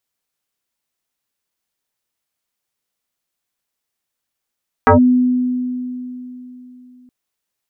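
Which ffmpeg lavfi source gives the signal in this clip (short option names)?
-f lavfi -i "aevalsrc='0.562*pow(10,-3*t/3.46)*sin(2*PI*250*t+4.2*clip(1-t/0.12,0,1)*sin(2*PI*1.38*250*t))':d=2.22:s=44100"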